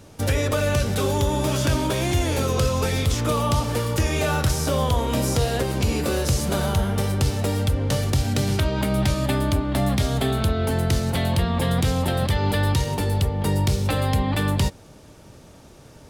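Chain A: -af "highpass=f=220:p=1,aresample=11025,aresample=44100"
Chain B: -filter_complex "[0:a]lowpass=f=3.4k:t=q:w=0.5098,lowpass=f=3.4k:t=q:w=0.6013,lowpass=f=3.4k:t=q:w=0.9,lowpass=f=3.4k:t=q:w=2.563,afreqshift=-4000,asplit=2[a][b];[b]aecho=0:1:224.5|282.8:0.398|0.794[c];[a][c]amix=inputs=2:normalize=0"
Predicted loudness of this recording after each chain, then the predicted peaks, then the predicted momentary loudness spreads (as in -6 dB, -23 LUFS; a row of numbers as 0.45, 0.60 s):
-26.0, -16.0 LUFS; -11.5, -6.0 dBFS; 3, 2 LU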